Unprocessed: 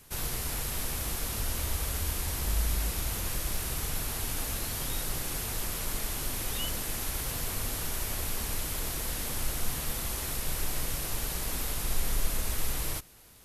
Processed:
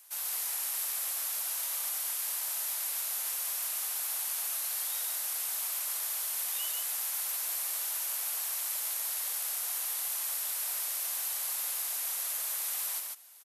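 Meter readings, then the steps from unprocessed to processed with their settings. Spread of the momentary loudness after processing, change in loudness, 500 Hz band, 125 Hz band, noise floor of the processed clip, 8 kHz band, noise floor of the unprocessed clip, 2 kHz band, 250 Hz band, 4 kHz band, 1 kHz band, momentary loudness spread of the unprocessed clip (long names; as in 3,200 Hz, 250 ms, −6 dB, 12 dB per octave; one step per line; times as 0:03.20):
0 LU, +1.5 dB, −13.0 dB, below −40 dB, −36 dBFS, +2.5 dB, −36 dBFS, −4.5 dB, below −30 dB, −2.0 dB, −5.5 dB, 1 LU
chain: high-pass filter 670 Hz 24 dB per octave
high-shelf EQ 6,400 Hz +11 dB
on a send: single-tap delay 143 ms −3 dB
on the sum: level −7 dB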